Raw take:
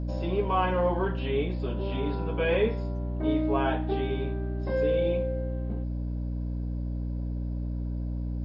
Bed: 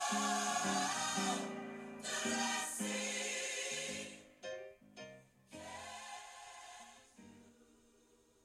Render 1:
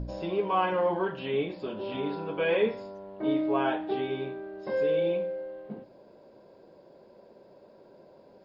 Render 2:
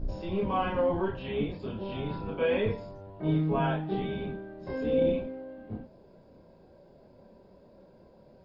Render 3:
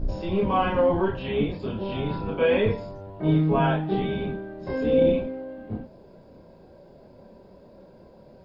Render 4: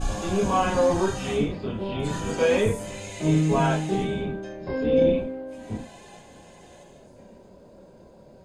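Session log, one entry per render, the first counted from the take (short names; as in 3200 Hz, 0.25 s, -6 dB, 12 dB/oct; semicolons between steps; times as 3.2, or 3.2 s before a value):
de-hum 60 Hz, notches 5
octaver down 1 oct, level +4 dB; chorus voices 4, 0.24 Hz, delay 29 ms, depth 2.8 ms
gain +6 dB
add bed 0 dB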